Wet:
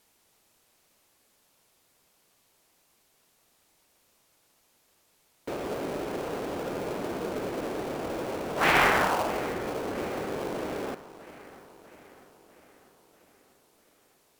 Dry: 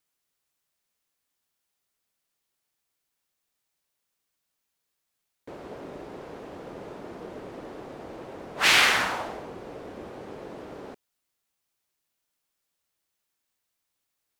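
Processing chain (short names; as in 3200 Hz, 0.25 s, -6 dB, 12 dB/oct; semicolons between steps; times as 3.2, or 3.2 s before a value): G.711 law mismatch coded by mu; treble ducked by the level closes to 1400 Hz, closed at -31.5 dBFS; dark delay 0.646 s, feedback 57%, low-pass 3300 Hz, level -17 dB; in parallel at -5 dB: sample-rate reducer 1900 Hz, jitter 20%; on the sum: low shelf 280 Hz -5.5 dB; gain +3.5 dB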